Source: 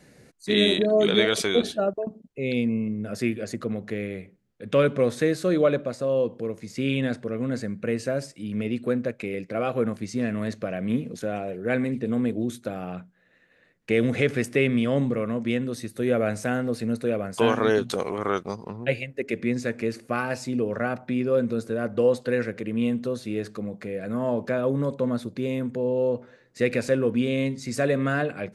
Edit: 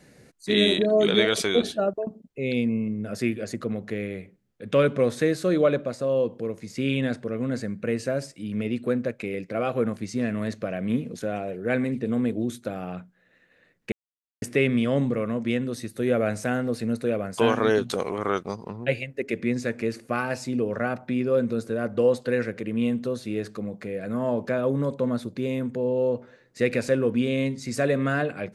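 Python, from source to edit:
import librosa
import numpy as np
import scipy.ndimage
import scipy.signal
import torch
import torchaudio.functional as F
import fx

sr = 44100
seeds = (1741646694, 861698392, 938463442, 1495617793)

y = fx.edit(x, sr, fx.silence(start_s=13.92, length_s=0.5), tone=tone)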